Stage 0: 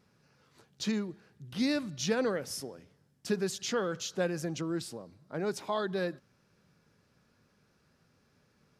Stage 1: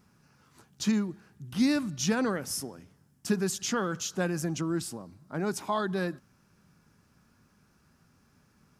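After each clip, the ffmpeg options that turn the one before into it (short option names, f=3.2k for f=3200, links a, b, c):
-af "equalizer=f=125:t=o:w=1:g=-4,equalizer=f=500:t=o:w=1:g=-11,equalizer=f=2k:t=o:w=1:g=-5,equalizer=f=4k:t=o:w=1:g=-8,volume=8.5dB"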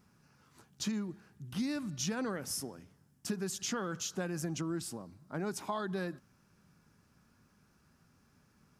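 -af "acompressor=threshold=-29dB:ratio=6,volume=-3dB"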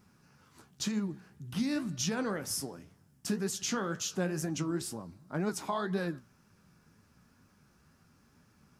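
-af "flanger=delay=8.6:depth=9:regen=57:speed=2:shape=triangular,volume=7dB"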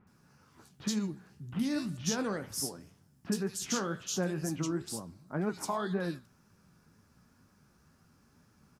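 -filter_complex "[0:a]acrossover=split=2500[a][b];[b]adelay=70[c];[a][c]amix=inputs=2:normalize=0"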